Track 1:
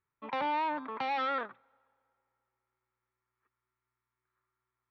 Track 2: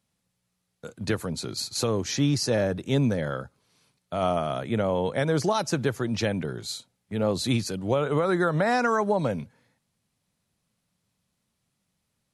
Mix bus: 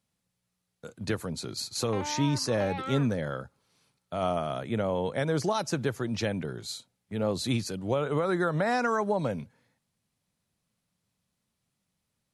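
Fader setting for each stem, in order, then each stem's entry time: −5.0, −3.5 decibels; 1.60, 0.00 seconds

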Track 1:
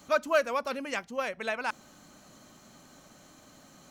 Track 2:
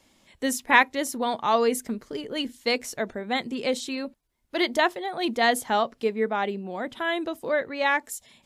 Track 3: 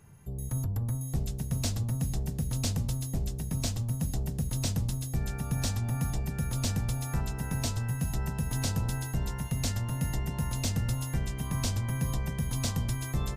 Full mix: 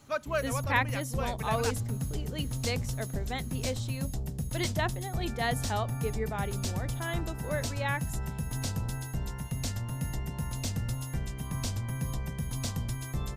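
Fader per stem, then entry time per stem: −6.0, −9.5, −3.0 decibels; 0.00, 0.00, 0.00 seconds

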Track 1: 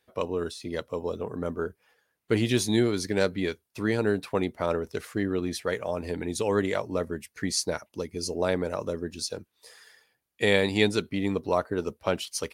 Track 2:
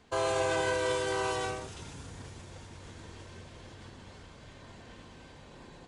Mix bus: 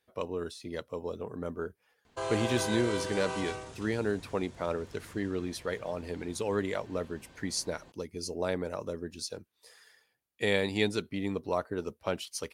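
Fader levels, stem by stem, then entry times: −5.5, −4.5 decibels; 0.00, 2.05 seconds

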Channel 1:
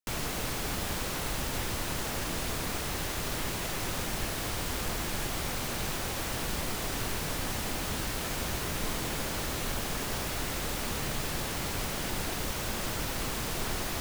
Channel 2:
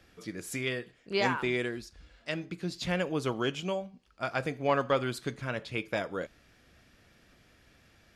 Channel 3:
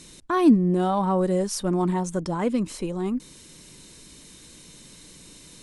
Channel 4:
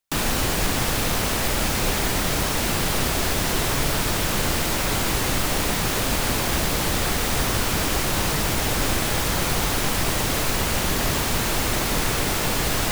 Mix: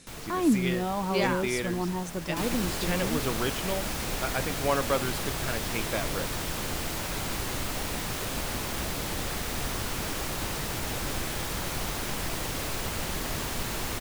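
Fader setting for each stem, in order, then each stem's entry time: −8.0, 0.0, −7.0, −10.0 decibels; 0.00, 0.00, 0.00, 2.25 seconds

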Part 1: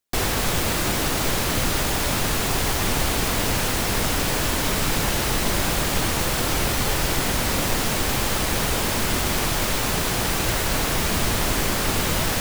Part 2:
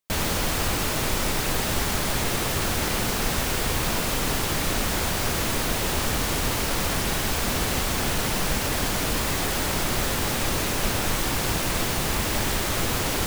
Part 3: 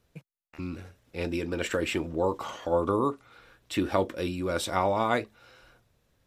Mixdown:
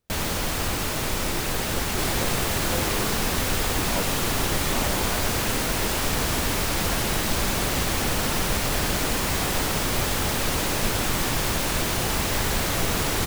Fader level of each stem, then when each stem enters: −6.0, −1.5, −9.0 decibels; 1.85, 0.00, 0.00 seconds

